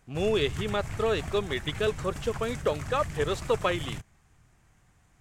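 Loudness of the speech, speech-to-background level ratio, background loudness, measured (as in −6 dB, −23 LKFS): −29.5 LKFS, 9.0 dB, −38.5 LKFS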